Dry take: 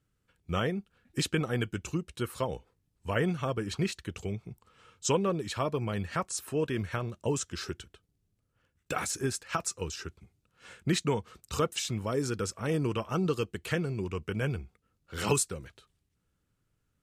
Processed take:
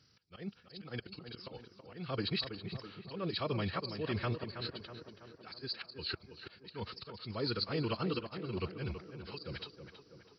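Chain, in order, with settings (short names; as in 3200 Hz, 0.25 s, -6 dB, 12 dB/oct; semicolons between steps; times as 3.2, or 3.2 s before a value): nonlinear frequency compression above 3800 Hz 4:1; high shelf 2700 Hz +11 dB; reverse; compressor 16:1, threshold -39 dBFS, peak gain reduction 25 dB; reverse; auto swell 0.395 s; HPF 80 Hz 24 dB/oct; time stretch by phase-locked vocoder 0.61×; on a send: tape echo 0.325 s, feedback 64%, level -7 dB, low-pass 1800 Hz; on the sum: gain +8.5 dB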